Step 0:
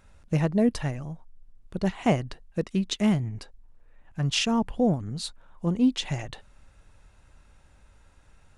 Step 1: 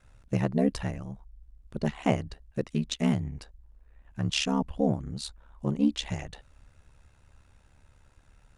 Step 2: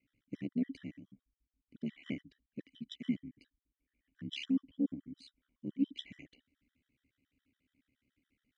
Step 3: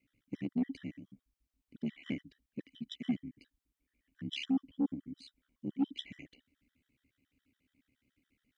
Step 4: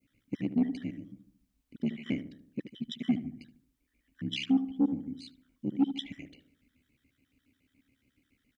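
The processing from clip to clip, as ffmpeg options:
-af "aeval=exprs='val(0)*sin(2*PI*35*n/s)':c=same"
-filter_complex "[0:a]asplit=3[a][b][c];[a]bandpass=f=270:t=q:w=8,volume=0dB[d];[b]bandpass=f=2.29k:t=q:w=8,volume=-6dB[e];[c]bandpass=f=3.01k:t=q:w=8,volume=-9dB[f];[d][e][f]amix=inputs=3:normalize=0,afftfilt=real='re*gt(sin(2*PI*7.1*pts/sr)*(1-2*mod(floor(b*sr/1024/1000),2)),0)':imag='im*gt(sin(2*PI*7.1*pts/sr)*(1-2*mod(floor(b*sr/1024/1000),2)),0)':win_size=1024:overlap=0.75,volume=2.5dB"
-af "asoftclip=type=tanh:threshold=-25dB,volume=2.5dB"
-filter_complex "[0:a]adynamicequalizer=threshold=0.00126:dfrequency=2200:dqfactor=0.74:tfrequency=2200:tqfactor=0.74:attack=5:release=100:ratio=0.375:range=2:mode=cutabove:tftype=bell,asplit=2[a][b];[b]adelay=75,lowpass=f=1k:p=1,volume=-10.5dB,asplit=2[c][d];[d]adelay=75,lowpass=f=1k:p=1,volume=0.52,asplit=2[e][f];[f]adelay=75,lowpass=f=1k:p=1,volume=0.52,asplit=2[g][h];[h]adelay=75,lowpass=f=1k:p=1,volume=0.52,asplit=2[i][j];[j]adelay=75,lowpass=f=1k:p=1,volume=0.52,asplit=2[k][l];[l]adelay=75,lowpass=f=1k:p=1,volume=0.52[m];[c][e][g][i][k][m]amix=inputs=6:normalize=0[n];[a][n]amix=inputs=2:normalize=0,volume=5.5dB"

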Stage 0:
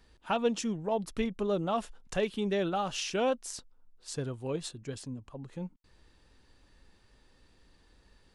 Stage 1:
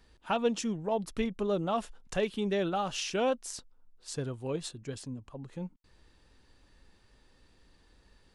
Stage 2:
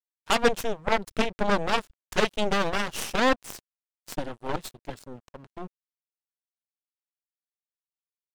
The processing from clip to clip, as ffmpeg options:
-af anull
-af "aeval=exprs='sgn(val(0))*max(abs(val(0))-0.00596,0)':c=same,aeval=exprs='0.141*(cos(1*acos(clip(val(0)/0.141,-1,1)))-cos(1*PI/2))+0.0355*(cos(7*acos(clip(val(0)/0.141,-1,1)))-cos(7*PI/2))+0.0224*(cos(8*acos(clip(val(0)/0.141,-1,1)))-cos(8*PI/2))':c=same,volume=6.5dB"

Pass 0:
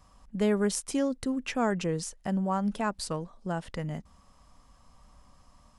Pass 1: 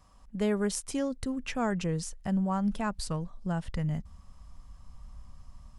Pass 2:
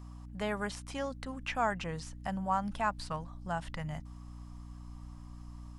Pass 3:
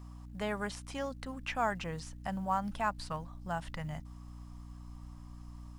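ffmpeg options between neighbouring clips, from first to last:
-af "asubboost=boost=5:cutoff=160,volume=-2dB"
-filter_complex "[0:a]lowshelf=f=550:t=q:w=1.5:g=-10,acrossover=split=3800[a][b];[b]acompressor=threshold=-52dB:ratio=4:attack=1:release=60[c];[a][c]amix=inputs=2:normalize=0,aeval=exprs='val(0)+0.00447*(sin(2*PI*60*n/s)+sin(2*PI*2*60*n/s)/2+sin(2*PI*3*60*n/s)/3+sin(2*PI*4*60*n/s)/4+sin(2*PI*5*60*n/s)/5)':c=same,volume=1.5dB"
-af "acrusher=bits=9:mode=log:mix=0:aa=0.000001,volume=-1dB"

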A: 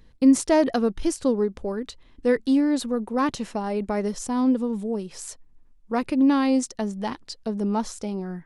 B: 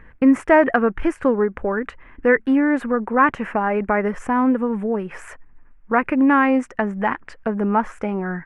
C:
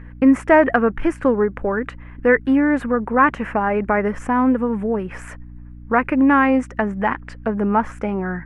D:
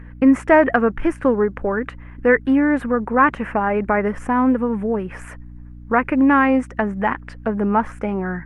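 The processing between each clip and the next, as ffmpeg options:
-filter_complex "[0:a]firequalizer=gain_entry='entry(250,0);entry(1600,14);entry(2500,5);entry(4000,-23);entry(7800,-17)':delay=0.05:min_phase=1,asplit=2[a][b];[b]acompressor=threshold=-29dB:ratio=6,volume=1.5dB[c];[a][c]amix=inputs=2:normalize=0"
-af "aeval=exprs='val(0)+0.0126*(sin(2*PI*60*n/s)+sin(2*PI*2*60*n/s)/2+sin(2*PI*3*60*n/s)/3+sin(2*PI*4*60*n/s)/4+sin(2*PI*5*60*n/s)/5)':c=same,volume=1dB"
-ar 48000 -c:a libopus -b:a 48k

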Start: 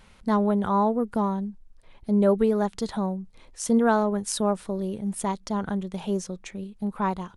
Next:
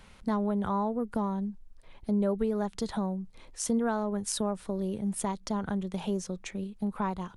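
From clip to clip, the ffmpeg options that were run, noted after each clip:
-filter_complex "[0:a]acrossover=split=130[a][b];[b]acompressor=threshold=-30dB:ratio=2.5[c];[a][c]amix=inputs=2:normalize=0"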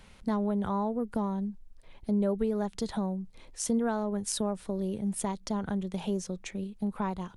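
-af "equalizer=f=1.2k:w=1.5:g=-3"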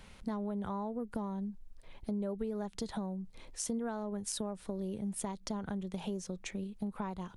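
-af "acompressor=threshold=-37dB:ratio=2.5"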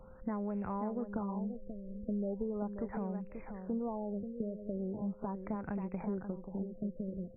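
-af "aeval=exprs='val(0)+0.00141*sin(2*PI*520*n/s)':c=same,aecho=1:1:535|1070|1605:0.398|0.0836|0.0176,afftfilt=real='re*lt(b*sr/1024,630*pow(2800/630,0.5+0.5*sin(2*PI*0.39*pts/sr)))':imag='im*lt(b*sr/1024,630*pow(2800/630,0.5+0.5*sin(2*PI*0.39*pts/sr)))':win_size=1024:overlap=0.75"

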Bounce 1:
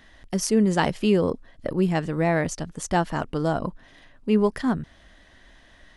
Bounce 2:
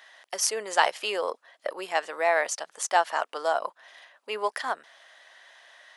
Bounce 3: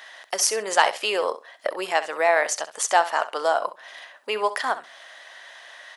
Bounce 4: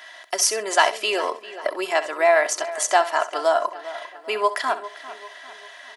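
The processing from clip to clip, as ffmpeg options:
-af "highpass=f=610:w=0.5412,highpass=f=610:w=1.3066,volume=3dB"
-filter_complex "[0:a]asplit=2[a][b];[b]acompressor=threshold=-35dB:ratio=6,volume=1dB[c];[a][c]amix=inputs=2:normalize=0,aecho=1:1:65|130:0.2|0.0339,volume=2dB"
-filter_complex "[0:a]aecho=1:1:3:0.62,asplit=2[a][b];[b]adelay=398,lowpass=f=3.6k:p=1,volume=-15dB,asplit=2[c][d];[d]adelay=398,lowpass=f=3.6k:p=1,volume=0.51,asplit=2[e][f];[f]adelay=398,lowpass=f=3.6k:p=1,volume=0.51,asplit=2[g][h];[h]adelay=398,lowpass=f=3.6k:p=1,volume=0.51,asplit=2[i][j];[j]adelay=398,lowpass=f=3.6k:p=1,volume=0.51[k];[a][c][e][g][i][k]amix=inputs=6:normalize=0"

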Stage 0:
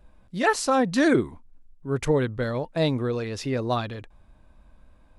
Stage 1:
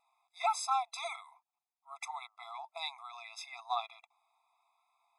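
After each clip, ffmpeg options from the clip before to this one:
-af "bandreject=f=59.75:t=h:w=4,bandreject=f=119.5:t=h:w=4,bandreject=f=179.25:t=h:w=4,bandreject=f=239:t=h:w=4,bandreject=f=298.75:t=h:w=4,bandreject=f=358.5:t=h:w=4,bandreject=f=418.25:t=h:w=4,bandreject=f=478:t=h:w=4,bandreject=f=537.75:t=h:w=4,bandreject=f=597.5:t=h:w=4,afftfilt=real='re*eq(mod(floor(b*sr/1024/670),2),1)':imag='im*eq(mod(floor(b*sr/1024/670),2),1)':win_size=1024:overlap=0.75,volume=-5.5dB"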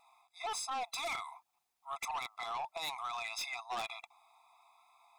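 -af "areverse,acompressor=threshold=-41dB:ratio=10,areverse,aeval=exprs='0.0237*(cos(1*acos(clip(val(0)/0.0237,-1,1)))-cos(1*PI/2))+0.00841*(cos(5*acos(clip(val(0)/0.0237,-1,1)))-cos(5*PI/2))+0.00119*(cos(6*acos(clip(val(0)/0.0237,-1,1)))-cos(6*PI/2))+0.000473*(cos(8*acos(clip(val(0)/0.0237,-1,1)))-cos(8*PI/2))':c=same,volume=1.5dB"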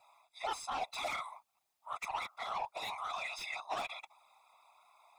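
-filter_complex "[0:a]acrossover=split=110|3100[a][b][c];[c]alimiter=level_in=16.5dB:limit=-24dB:level=0:latency=1:release=39,volume=-16.5dB[d];[a][b][d]amix=inputs=3:normalize=0,afftfilt=real='hypot(re,im)*cos(2*PI*random(0))':imag='hypot(re,im)*sin(2*PI*random(1))':win_size=512:overlap=0.75,volume=6.5dB"

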